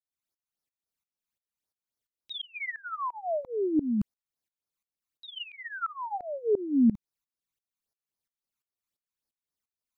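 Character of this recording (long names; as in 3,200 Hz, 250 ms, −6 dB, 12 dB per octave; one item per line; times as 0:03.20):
tremolo saw up 2.9 Hz, depth 95%
phaser sweep stages 12, 3.7 Hz, lowest notch 510–3,000 Hz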